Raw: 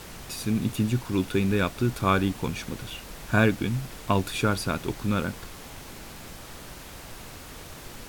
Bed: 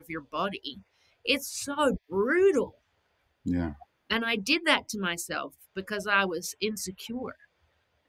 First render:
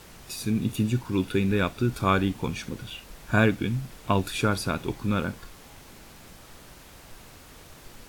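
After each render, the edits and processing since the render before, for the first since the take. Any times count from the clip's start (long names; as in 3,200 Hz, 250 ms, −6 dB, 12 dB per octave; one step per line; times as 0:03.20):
noise reduction from a noise print 6 dB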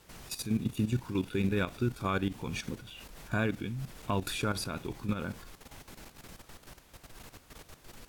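output level in coarse steps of 12 dB
brickwall limiter −20.5 dBFS, peak gain reduction 6.5 dB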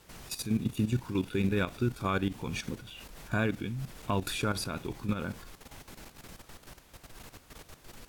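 level +1 dB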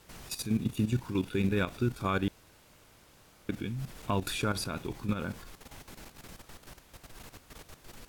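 0:02.28–0:03.49: fill with room tone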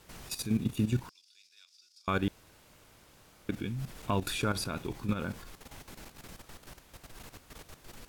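0:01.09–0:02.08: four-pole ladder band-pass 5,400 Hz, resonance 75%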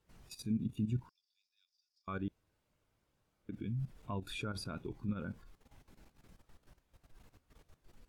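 brickwall limiter −25.5 dBFS, peak gain reduction 6 dB
every bin expanded away from the loudest bin 1.5 to 1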